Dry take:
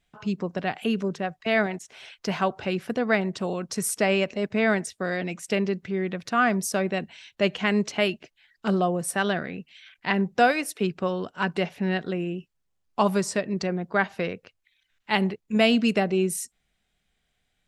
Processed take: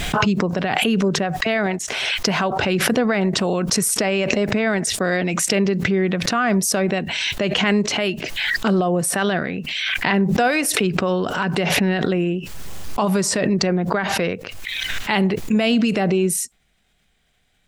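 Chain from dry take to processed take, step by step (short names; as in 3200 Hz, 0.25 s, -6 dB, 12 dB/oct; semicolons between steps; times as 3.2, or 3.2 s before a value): maximiser +18 dB; backwards sustainer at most 22 dB/s; gain -9.5 dB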